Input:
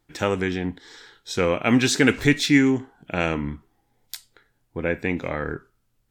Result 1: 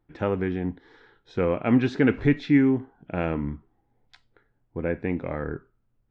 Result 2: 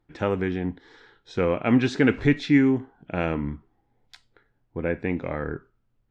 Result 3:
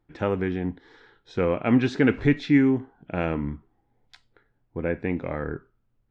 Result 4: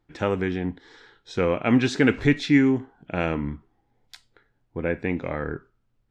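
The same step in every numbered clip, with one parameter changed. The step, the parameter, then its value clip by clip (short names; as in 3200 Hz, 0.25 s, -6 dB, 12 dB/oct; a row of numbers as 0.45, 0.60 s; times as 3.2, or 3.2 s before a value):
tape spacing loss, at 10 kHz: 45, 29, 37, 20 dB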